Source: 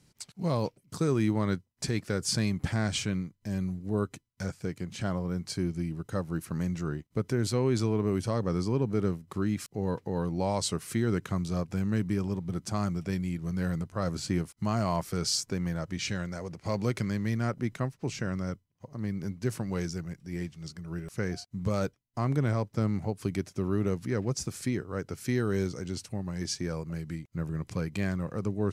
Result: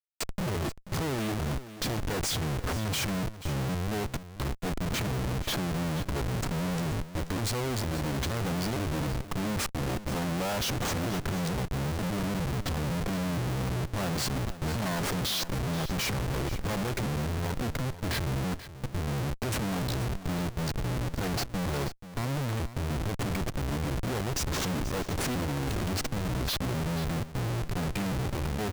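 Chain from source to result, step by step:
pitch shifter gated in a rhythm −5.5 semitones, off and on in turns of 461 ms
comparator with hysteresis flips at −42.5 dBFS
single-tap delay 484 ms −14 dB
level +1.5 dB

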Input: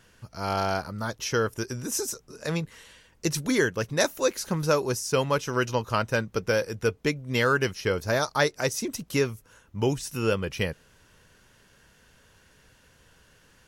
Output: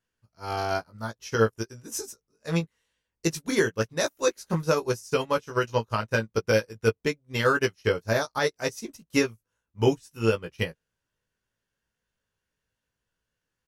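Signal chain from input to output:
double-tracking delay 18 ms −4 dB
boost into a limiter +12.5 dB
expander for the loud parts 2.5 to 1, over −28 dBFS
level −8 dB

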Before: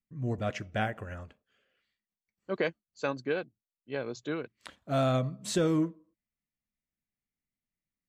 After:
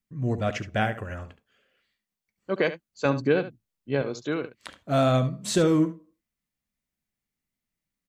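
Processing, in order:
0:03.05–0:04.02: low-shelf EQ 280 Hz +11.5 dB
on a send: single-tap delay 71 ms −13 dB
on the sum: level +5.5 dB

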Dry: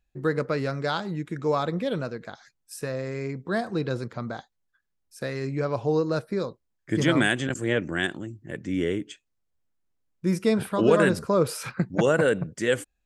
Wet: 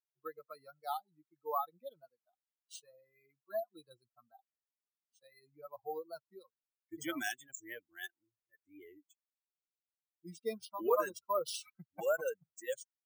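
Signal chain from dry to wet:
spectral dynamics exaggerated over time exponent 3
high-pass filter 720 Hz 12 dB per octave
flat-topped bell 3,000 Hz −11.5 dB 2.3 octaves
bad sample-rate conversion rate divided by 3×, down none, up hold
wow of a warped record 45 rpm, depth 100 cents
level +1 dB

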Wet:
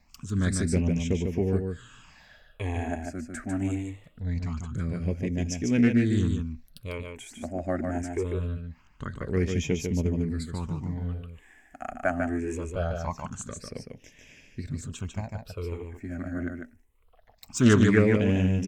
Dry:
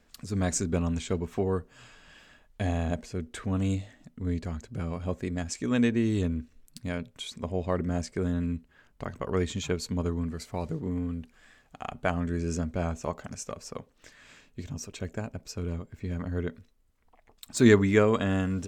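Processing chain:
all-pass phaser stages 8, 0.23 Hz, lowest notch 130–1,300 Hz
on a send: single-tap delay 148 ms −5 dB
on the sum: highs frequency-modulated by the lows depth 0.23 ms
level +2.5 dB

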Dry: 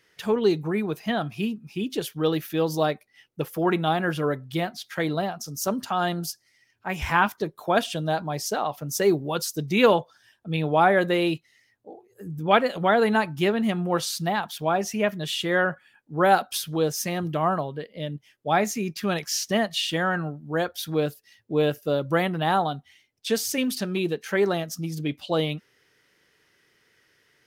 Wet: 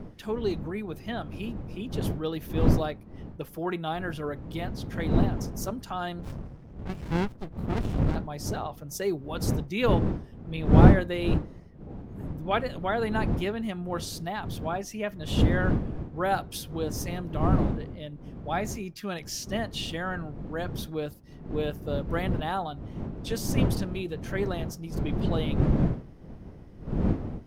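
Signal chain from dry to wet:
wind on the microphone 210 Hz −21 dBFS
0:06.19–0:08.16: windowed peak hold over 65 samples
level −8 dB

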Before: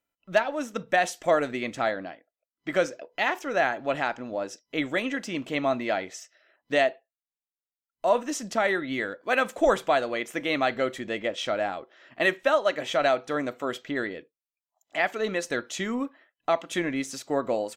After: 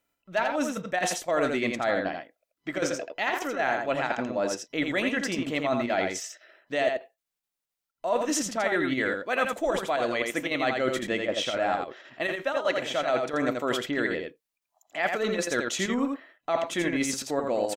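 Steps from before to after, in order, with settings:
reversed playback
downward compressor 6 to 1, threshold −31 dBFS, peak gain reduction 14.5 dB
reversed playback
square-wave tremolo 3.9 Hz, depth 60%, duty 85%
single-tap delay 84 ms −4.5 dB
level +7 dB

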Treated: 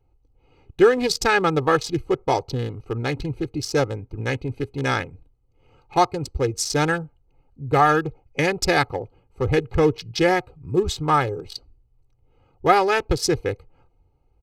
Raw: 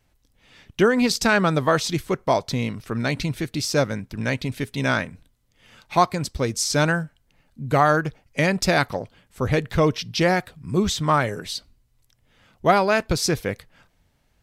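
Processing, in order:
adaptive Wiener filter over 25 samples
comb filter 2.4 ms, depth 76%

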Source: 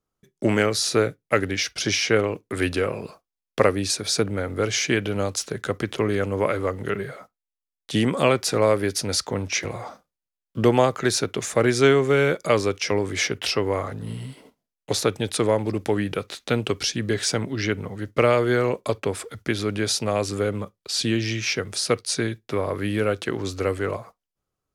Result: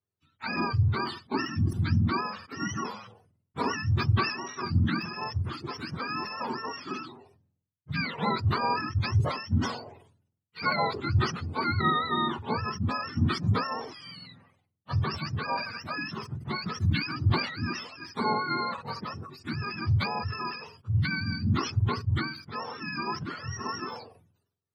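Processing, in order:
frequency axis turned over on the octave scale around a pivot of 720 Hz
level that may fall only so fast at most 81 dB per second
level −8 dB

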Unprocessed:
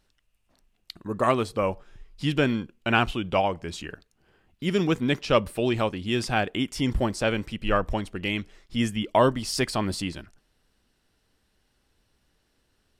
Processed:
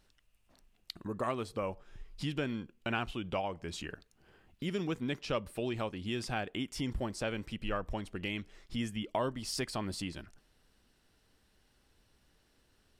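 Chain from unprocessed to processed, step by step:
downward compressor 2 to 1, threshold −41 dBFS, peak gain reduction 14.5 dB

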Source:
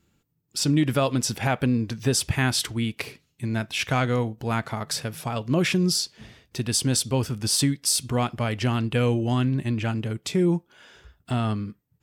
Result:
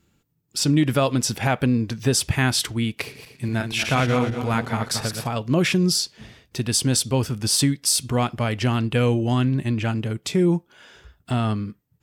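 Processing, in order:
0:03.02–0:05.27: feedback delay that plays each chunk backwards 117 ms, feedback 55%, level −6 dB
level +2.5 dB

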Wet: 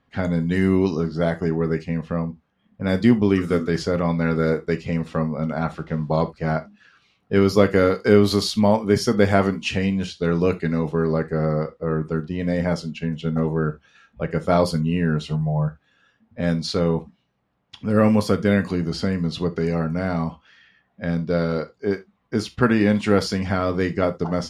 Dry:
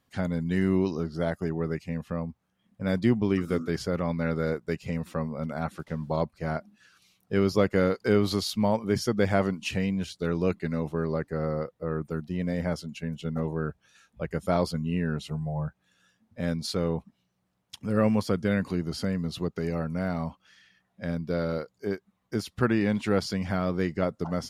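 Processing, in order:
low-pass that shuts in the quiet parts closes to 2,700 Hz, open at −21 dBFS
reverb whose tail is shaped and stops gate 100 ms falling, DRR 8.5 dB
level +6.5 dB

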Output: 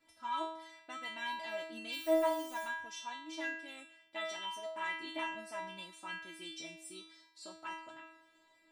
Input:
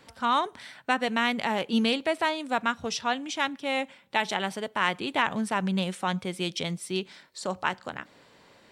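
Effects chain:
0:01.91–0:02.63: background noise white −41 dBFS
stiff-string resonator 320 Hz, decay 0.7 s, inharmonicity 0.002
level +6.5 dB

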